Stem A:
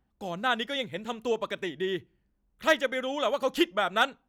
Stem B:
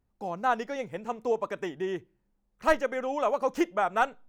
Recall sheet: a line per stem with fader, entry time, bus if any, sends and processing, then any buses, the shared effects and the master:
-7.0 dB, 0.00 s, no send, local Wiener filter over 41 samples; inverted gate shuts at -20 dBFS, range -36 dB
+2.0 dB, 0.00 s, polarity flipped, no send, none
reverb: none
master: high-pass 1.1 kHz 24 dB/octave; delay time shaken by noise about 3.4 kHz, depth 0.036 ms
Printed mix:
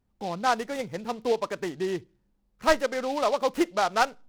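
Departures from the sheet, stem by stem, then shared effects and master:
stem B: polarity flipped; master: missing high-pass 1.1 kHz 24 dB/octave

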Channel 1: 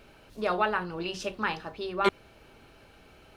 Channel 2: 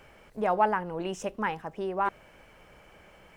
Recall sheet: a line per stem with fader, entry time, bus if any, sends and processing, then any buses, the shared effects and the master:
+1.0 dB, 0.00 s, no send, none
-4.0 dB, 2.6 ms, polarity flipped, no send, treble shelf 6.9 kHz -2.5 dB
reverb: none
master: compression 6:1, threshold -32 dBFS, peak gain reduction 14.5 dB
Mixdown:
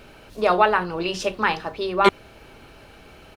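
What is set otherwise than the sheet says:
stem 1 +1.0 dB -> +8.0 dB; master: missing compression 6:1, threshold -32 dBFS, peak gain reduction 14.5 dB

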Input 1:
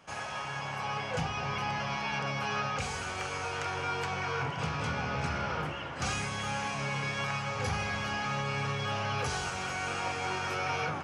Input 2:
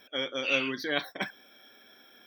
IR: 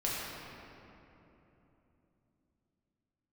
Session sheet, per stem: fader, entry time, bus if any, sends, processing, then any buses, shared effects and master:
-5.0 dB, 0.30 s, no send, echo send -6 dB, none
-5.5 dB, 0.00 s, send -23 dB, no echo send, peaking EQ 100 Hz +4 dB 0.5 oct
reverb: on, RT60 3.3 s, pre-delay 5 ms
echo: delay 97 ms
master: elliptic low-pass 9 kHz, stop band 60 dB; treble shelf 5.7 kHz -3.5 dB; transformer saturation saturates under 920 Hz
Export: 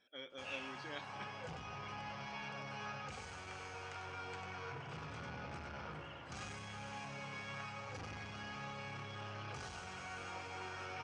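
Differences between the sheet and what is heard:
stem 1 -5.0 dB -> -12.0 dB; stem 2 -5.5 dB -> -17.0 dB

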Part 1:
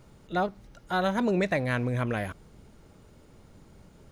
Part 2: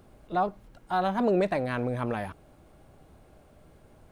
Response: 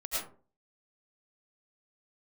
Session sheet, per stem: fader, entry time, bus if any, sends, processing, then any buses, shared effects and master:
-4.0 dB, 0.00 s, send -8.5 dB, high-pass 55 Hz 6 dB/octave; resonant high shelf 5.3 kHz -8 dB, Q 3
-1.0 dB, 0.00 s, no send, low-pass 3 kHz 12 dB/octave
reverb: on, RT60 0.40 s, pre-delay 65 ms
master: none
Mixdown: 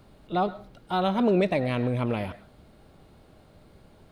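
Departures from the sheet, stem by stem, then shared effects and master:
stem 1: send -8.5 dB -> -16.5 dB; stem 2: missing low-pass 3 kHz 12 dB/octave

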